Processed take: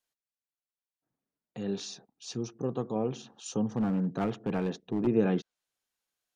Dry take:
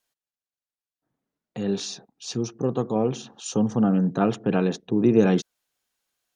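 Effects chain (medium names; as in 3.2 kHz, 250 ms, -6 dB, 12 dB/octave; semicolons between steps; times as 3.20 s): low-pass that closes with the level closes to 3 kHz, closed at -15.5 dBFS; 3.76–5.07 s: hard clipper -16.5 dBFS, distortion -17 dB; trim -7.5 dB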